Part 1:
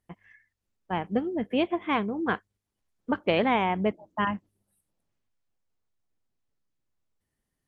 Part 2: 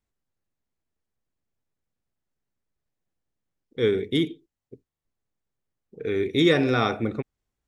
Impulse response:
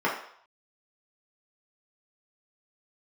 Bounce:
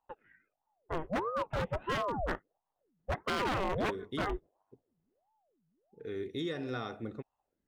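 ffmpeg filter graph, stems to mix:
-filter_complex "[0:a]lowpass=f=2400:w=0.5412,lowpass=f=2400:w=1.3066,equalizer=f=1200:w=0.32:g=-6.5,aeval=exprs='val(0)*sin(2*PI*520*n/s+520*0.7/1.5*sin(2*PI*1.5*n/s))':c=same,volume=1.26[s0];[1:a]alimiter=limit=0.211:level=0:latency=1:release=274,volume=0.224[s1];[s0][s1]amix=inputs=2:normalize=0,bandreject=f=2300:w=6.9,aeval=exprs='0.0531*(abs(mod(val(0)/0.0531+3,4)-2)-1)':c=same"

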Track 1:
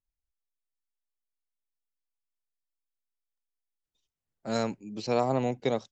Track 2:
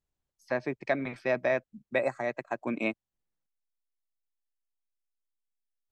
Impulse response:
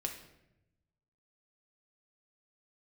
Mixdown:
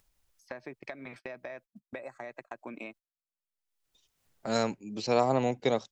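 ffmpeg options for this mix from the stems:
-filter_complex "[0:a]volume=1.33[s0];[1:a]acompressor=threshold=0.0282:ratio=16,volume=0.422[s1];[s0][s1]amix=inputs=2:normalize=0,agate=range=0.02:threshold=0.00251:ratio=16:detection=peak,lowshelf=f=370:g=-4.5,acompressor=mode=upward:threshold=0.0178:ratio=2.5"

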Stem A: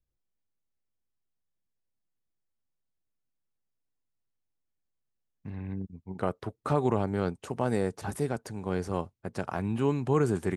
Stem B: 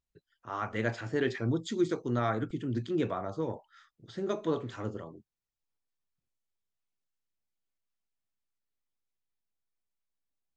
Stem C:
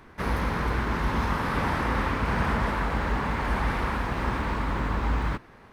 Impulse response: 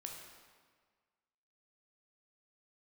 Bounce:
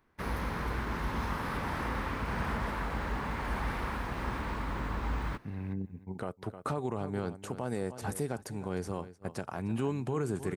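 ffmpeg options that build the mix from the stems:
-filter_complex "[0:a]volume=0.944,asplit=2[s0][s1];[s1]volume=0.119[s2];[2:a]volume=0.422[s3];[s0][s3]amix=inputs=2:normalize=0,highshelf=f=9800:g=8,alimiter=limit=0.075:level=0:latency=1:release=259,volume=1[s4];[s2]aecho=0:1:306:1[s5];[s4][s5]amix=inputs=2:normalize=0,agate=range=0.224:threshold=0.00316:ratio=16:detection=peak"

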